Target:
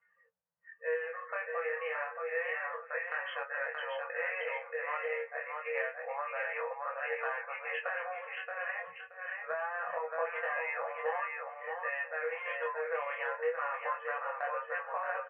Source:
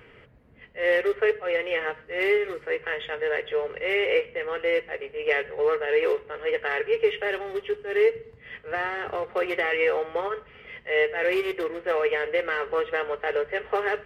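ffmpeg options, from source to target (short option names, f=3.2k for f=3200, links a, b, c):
-filter_complex "[0:a]acrossover=split=190 3700:gain=0.0708 1 0.251[a][b][c];[a][b][c]amix=inputs=3:normalize=0,asplit=2[d][e];[e]alimiter=limit=-21.5dB:level=0:latency=1,volume=-3dB[f];[d][f]amix=inputs=2:normalize=0,afftfilt=real='re*(1-between(b*sr/4096,220,500))':imag='im*(1-between(b*sr/4096,220,500))':win_size=4096:overlap=0.75,afftdn=nr=30:nf=-39,equalizer=f=1.1k:t=o:w=0.86:g=6.5,flanger=delay=9:depth=1.8:regen=59:speed=0.87:shape=triangular,acompressor=threshold=-31dB:ratio=4,asplit=2[g][h];[h]aecho=0:1:575|1150|1725:0.631|0.145|0.0334[i];[g][i]amix=inputs=2:normalize=0,flanger=delay=19.5:depth=6.2:speed=0.29,asetrate=40517,aresample=44100"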